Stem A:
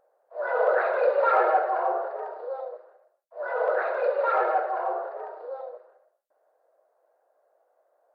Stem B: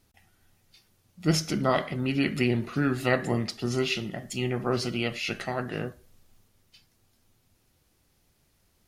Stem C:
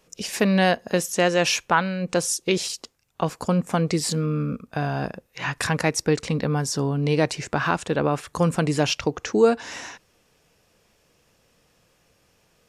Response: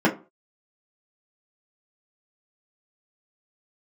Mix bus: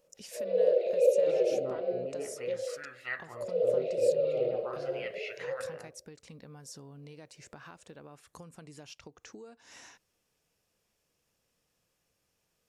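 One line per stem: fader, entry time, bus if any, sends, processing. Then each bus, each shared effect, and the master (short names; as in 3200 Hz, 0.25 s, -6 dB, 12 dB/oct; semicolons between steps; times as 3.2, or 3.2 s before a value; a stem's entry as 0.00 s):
+1.0 dB, 0.00 s, no send, elliptic band-stop 530–2700 Hz, stop band 40 dB; high shelf 4000 Hz -8.5 dB
-6.5 dB, 0.00 s, no send, resonant low shelf 140 Hz +6 dB, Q 3; wah 0.43 Hz 370–2100 Hz, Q 2.6
-17.0 dB, 0.00 s, no send, compressor 12:1, threshold -29 dBFS, peak gain reduction 18 dB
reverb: off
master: high shelf 5700 Hz +8 dB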